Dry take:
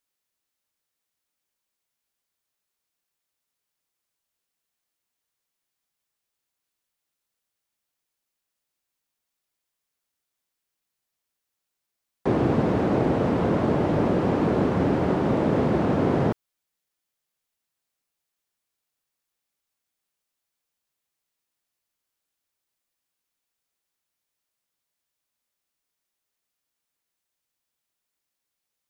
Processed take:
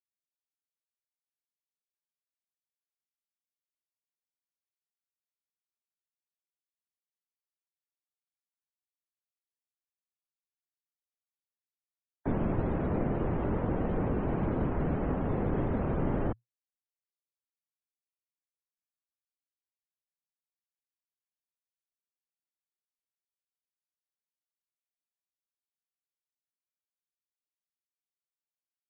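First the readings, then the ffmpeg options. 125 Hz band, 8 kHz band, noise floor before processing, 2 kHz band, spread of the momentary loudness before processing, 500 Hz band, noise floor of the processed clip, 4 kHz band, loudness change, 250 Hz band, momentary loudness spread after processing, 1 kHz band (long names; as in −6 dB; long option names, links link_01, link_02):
−6.0 dB, can't be measured, −84 dBFS, −10.0 dB, 2 LU, −10.0 dB, below −85 dBFS, below −15 dB, −8.5 dB, −9.0 dB, 2 LU, −9.5 dB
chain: -af "afreqshift=-120,afftdn=noise_reduction=34:noise_floor=-43,volume=-7.5dB"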